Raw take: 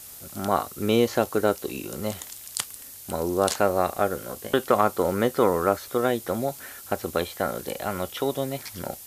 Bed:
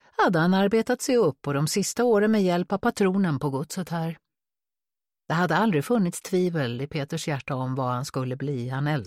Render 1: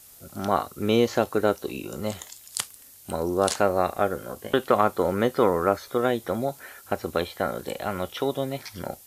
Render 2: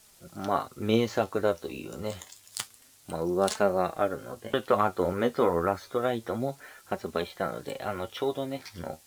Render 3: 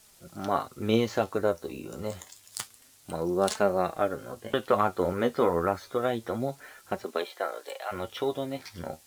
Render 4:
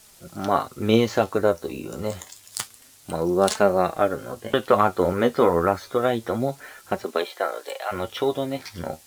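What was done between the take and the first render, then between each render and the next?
noise print and reduce 7 dB
median filter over 3 samples; flange 0.28 Hz, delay 4.5 ms, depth 8.4 ms, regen +42%
1.37–2.61 s: dynamic bell 3.1 kHz, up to -7 dB, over -51 dBFS, Q 1.3; 7.03–7.91 s: high-pass 240 Hz -> 620 Hz 24 dB/octave
trim +6 dB

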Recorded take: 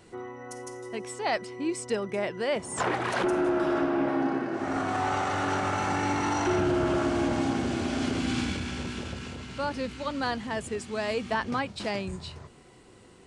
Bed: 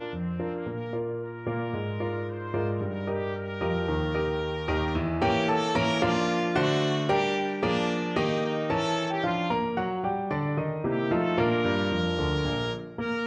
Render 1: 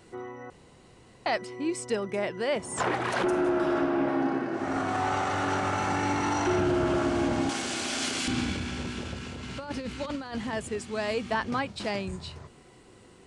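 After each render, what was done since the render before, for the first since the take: 0.50–1.26 s: room tone; 7.49–8.28 s: tilt EQ +4 dB/octave; 9.43–10.53 s: compressor with a negative ratio -33 dBFS, ratio -0.5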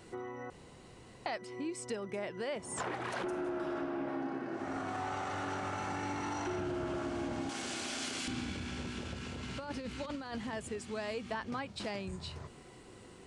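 compression 2.5:1, threshold -40 dBFS, peak gain reduction 11.5 dB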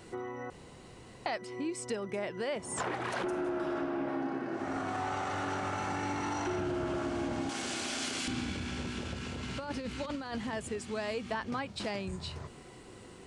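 trim +3 dB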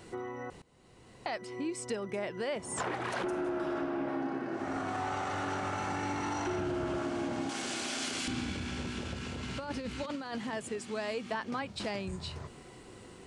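0.62–1.46 s: fade in, from -19.5 dB; 7.03–8.13 s: high-pass 110 Hz; 10.04–11.62 s: high-pass 150 Hz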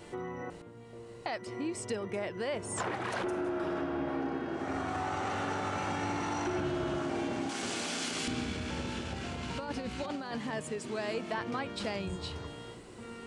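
add bed -17.5 dB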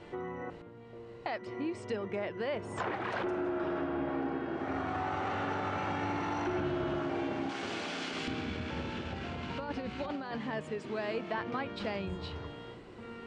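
low-pass 3.4 kHz 12 dB/octave; hum notches 60/120/180/240 Hz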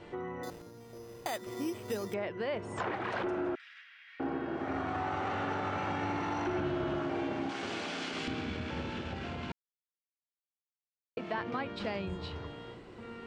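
0.43–2.14 s: careless resampling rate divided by 8×, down none, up hold; 3.55–4.20 s: elliptic high-pass 1.9 kHz, stop band 80 dB; 9.52–11.17 s: mute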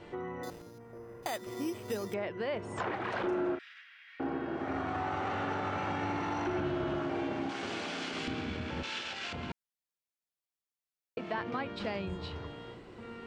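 0.78–1.23 s: resonant high shelf 2.5 kHz -12.5 dB, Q 1.5; 3.20–3.74 s: doubling 36 ms -7 dB; 8.83–9.33 s: frequency weighting ITU-R 468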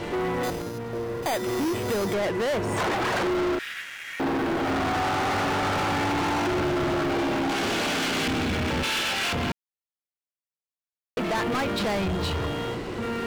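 waveshaping leveller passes 5

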